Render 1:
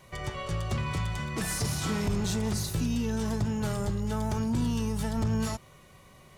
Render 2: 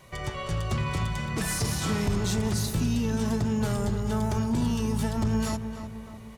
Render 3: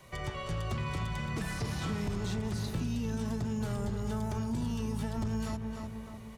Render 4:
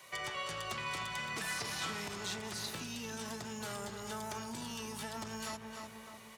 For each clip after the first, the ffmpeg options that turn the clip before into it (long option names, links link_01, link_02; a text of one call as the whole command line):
ffmpeg -i in.wav -filter_complex "[0:a]asplit=2[link_01][link_02];[link_02]adelay=304,lowpass=frequency=2300:poles=1,volume=-9dB,asplit=2[link_03][link_04];[link_04]adelay=304,lowpass=frequency=2300:poles=1,volume=0.53,asplit=2[link_05][link_06];[link_06]adelay=304,lowpass=frequency=2300:poles=1,volume=0.53,asplit=2[link_07][link_08];[link_08]adelay=304,lowpass=frequency=2300:poles=1,volume=0.53,asplit=2[link_09][link_10];[link_10]adelay=304,lowpass=frequency=2300:poles=1,volume=0.53,asplit=2[link_11][link_12];[link_12]adelay=304,lowpass=frequency=2300:poles=1,volume=0.53[link_13];[link_01][link_03][link_05][link_07][link_09][link_11][link_13]amix=inputs=7:normalize=0,volume=2dB" out.wav
ffmpeg -i in.wav -filter_complex "[0:a]acrossover=split=180|4200[link_01][link_02][link_03];[link_01]acompressor=threshold=-31dB:ratio=4[link_04];[link_02]acompressor=threshold=-34dB:ratio=4[link_05];[link_03]acompressor=threshold=-51dB:ratio=4[link_06];[link_04][link_05][link_06]amix=inputs=3:normalize=0,volume=-2.5dB" out.wav
ffmpeg -i in.wav -af "highpass=frequency=1400:poles=1,volume=5dB" out.wav